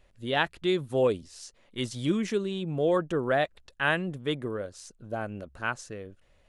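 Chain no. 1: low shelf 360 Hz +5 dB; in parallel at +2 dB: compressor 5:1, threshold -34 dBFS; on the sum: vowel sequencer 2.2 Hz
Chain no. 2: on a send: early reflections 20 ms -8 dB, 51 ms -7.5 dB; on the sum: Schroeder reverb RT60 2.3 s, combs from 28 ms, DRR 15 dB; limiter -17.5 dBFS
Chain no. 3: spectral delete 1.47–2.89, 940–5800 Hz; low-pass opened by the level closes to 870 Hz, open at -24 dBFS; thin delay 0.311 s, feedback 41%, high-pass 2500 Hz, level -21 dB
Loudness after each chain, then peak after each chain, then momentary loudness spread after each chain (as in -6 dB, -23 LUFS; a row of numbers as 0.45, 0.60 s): -36.5, -30.5, -29.5 LUFS; -16.0, -17.5, -10.0 dBFS; 16, 13, 12 LU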